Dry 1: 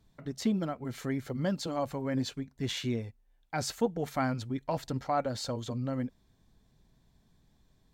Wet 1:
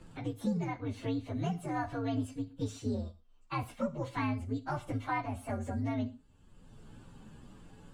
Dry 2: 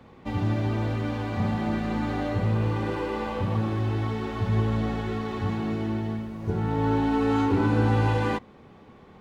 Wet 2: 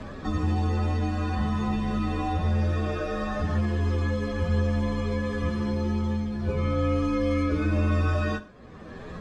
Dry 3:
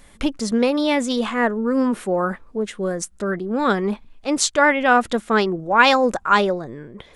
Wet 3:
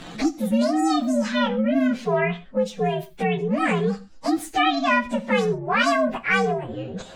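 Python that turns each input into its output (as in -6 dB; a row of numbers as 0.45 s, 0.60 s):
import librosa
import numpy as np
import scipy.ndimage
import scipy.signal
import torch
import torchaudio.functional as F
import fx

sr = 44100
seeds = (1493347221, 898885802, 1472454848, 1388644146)

y = fx.partial_stretch(x, sr, pct=129)
y = fx.air_absorb(y, sr, metres=68.0)
y = fx.rev_gated(y, sr, seeds[0], gate_ms=150, shape='falling', drr_db=11.5)
y = fx.band_squash(y, sr, depth_pct=70)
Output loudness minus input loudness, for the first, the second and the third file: -2.5 LU, -0.5 LU, -2.5 LU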